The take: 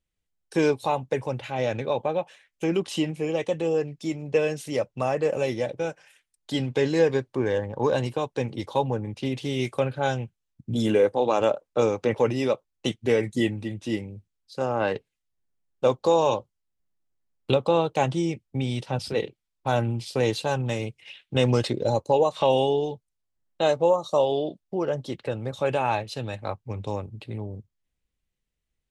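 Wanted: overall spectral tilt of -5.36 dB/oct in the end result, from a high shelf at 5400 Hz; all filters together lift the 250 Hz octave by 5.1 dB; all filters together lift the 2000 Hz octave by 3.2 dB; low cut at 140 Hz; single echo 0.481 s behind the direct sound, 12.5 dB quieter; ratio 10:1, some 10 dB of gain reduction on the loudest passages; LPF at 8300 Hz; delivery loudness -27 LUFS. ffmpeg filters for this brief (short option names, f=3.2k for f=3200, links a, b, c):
-af "highpass=140,lowpass=8.3k,equalizer=f=250:t=o:g=7,equalizer=f=2k:t=o:g=5.5,highshelf=f=5.4k:g=-9,acompressor=threshold=-24dB:ratio=10,aecho=1:1:481:0.237,volume=3.5dB"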